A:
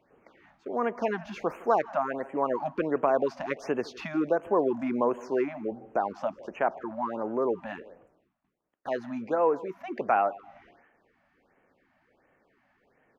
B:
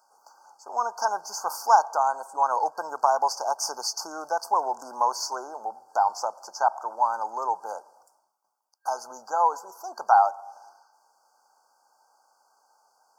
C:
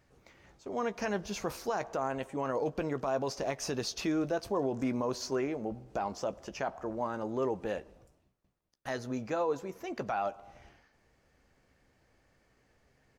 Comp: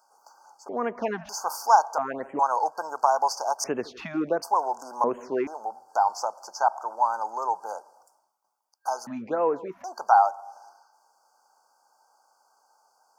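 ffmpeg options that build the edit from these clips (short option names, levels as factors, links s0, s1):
-filter_complex "[0:a]asplit=5[s0][s1][s2][s3][s4];[1:a]asplit=6[s5][s6][s7][s8][s9][s10];[s5]atrim=end=0.692[s11];[s0]atrim=start=0.688:end=1.292[s12];[s6]atrim=start=1.288:end=1.982[s13];[s1]atrim=start=1.978:end=2.392[s14];[s7]atrim=start=2.388:end=3.642[s15];[s2]atrim=start=3.638:end=4.422[s16];[s8]atrim=start=4.418:end=5.042[s17];[s3]atrim=start=5.038:end=5.472[s18];[s9]atrim=start=5.468:end=9.072[s19];[s4]atrim=start=9.068:end=9.842[s20];[s10]atrim=start=9.838[s21];[s11][s12]acrossfade=d=0.004:c1=hsin:c2=hsin[s22];[s22][s13]acrossfade=d=0.004:c1=hsin:c2=hsin[s23];[s23][s14]acrossfade=d=0.004:c1=hsin:c2=hsin[s24];[s24][s15]acrossfade=d=0.004:c1=hsin:c2=hsin[s25];[s25][s16]acrossfade=d=0.004:c1=hsin:c2=hsin[s26];[s26][s17]acrossfade=d=0.004:c1=hsin:c2=hsin[s27];[s27][s18]acrossfade=d=0.004:c1=hsin:c2=hsin[s28];[s28][s19]acrossfade=d=0.004:c1=hsin:c2=hsin[s29];[s29][s20]acrossfade=d=0.004:c1=hsin:c2=hsin[s30];[s30][s21]acrossfade=d=0.004:c1=hsin:c2=hsin"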